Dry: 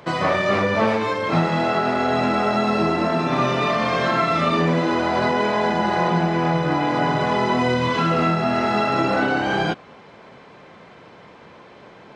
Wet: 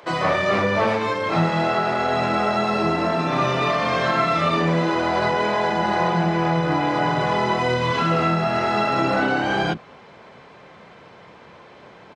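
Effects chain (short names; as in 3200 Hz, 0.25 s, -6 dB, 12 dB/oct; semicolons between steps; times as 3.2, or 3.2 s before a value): bands offset in time highs, lows 30 ms, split 270 Hz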